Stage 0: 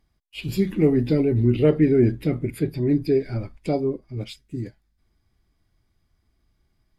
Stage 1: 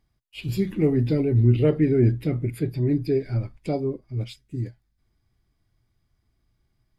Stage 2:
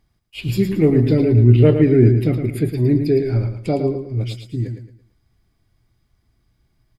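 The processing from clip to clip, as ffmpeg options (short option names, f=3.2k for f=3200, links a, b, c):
-af "equalizer=f=120:t=o:w=0.34:g=7.5,volume=-3dB"
-af "aecho=1:1:111|222|333|444:0.398|0.131|0.0434|0.0143,volume=6dB"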